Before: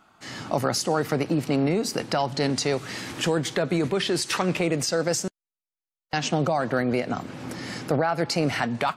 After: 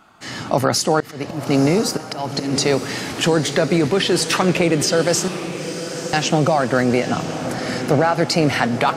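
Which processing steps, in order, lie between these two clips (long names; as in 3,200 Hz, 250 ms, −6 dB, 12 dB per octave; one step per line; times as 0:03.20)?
0:01.00–0:02.53: volume swells 230 ms
pitch vibrato 9.1 Hz 5.4 cents
feedback delay with all-pass diffusion 949 ms, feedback 56%, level −10.5 dB
level +7 dB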